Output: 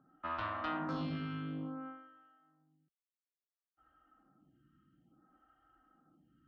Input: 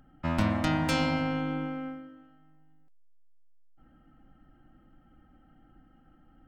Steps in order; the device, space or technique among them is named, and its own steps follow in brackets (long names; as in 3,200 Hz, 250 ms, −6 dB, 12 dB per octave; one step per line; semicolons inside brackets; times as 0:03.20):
vibe pedal into a guitar amplifier (phaser with staggered stages 0.58 Hz; tube saturation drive 27 dB, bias 0.3; loudspeaker in its box 88–3,800 Hz, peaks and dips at 89 Hz −9 dB, 240 Hz −4 dB, 530 Hz −6 dB, 850 Hz −5 dB, 1,200 Hz +9 dB, 2,200 Hz −8 dB)
level −3 dB